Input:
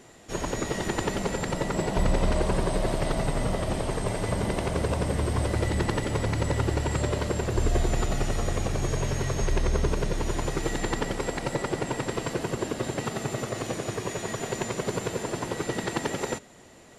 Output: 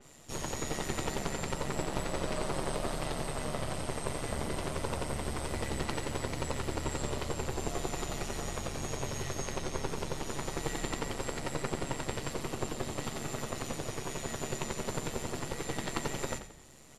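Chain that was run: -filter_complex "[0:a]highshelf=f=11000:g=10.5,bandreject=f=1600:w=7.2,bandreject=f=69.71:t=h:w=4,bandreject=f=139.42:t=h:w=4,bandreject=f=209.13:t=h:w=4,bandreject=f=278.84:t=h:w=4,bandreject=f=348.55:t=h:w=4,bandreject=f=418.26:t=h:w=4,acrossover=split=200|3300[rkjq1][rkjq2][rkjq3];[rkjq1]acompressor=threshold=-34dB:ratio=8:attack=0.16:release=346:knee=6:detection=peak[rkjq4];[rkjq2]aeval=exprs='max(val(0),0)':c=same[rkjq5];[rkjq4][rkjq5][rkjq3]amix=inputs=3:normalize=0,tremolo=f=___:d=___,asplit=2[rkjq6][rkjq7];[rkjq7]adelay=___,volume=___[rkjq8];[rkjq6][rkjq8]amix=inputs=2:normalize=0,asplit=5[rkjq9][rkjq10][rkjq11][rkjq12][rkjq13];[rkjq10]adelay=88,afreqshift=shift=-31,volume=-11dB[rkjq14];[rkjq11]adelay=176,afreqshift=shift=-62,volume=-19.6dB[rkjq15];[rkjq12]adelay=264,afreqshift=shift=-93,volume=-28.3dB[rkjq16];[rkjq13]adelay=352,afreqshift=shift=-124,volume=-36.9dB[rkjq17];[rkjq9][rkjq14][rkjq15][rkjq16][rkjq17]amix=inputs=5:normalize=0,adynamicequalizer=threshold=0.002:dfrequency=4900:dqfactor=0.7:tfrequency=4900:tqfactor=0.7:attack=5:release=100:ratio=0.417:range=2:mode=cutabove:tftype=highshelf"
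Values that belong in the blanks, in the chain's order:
140, 0.667, 13, -11dB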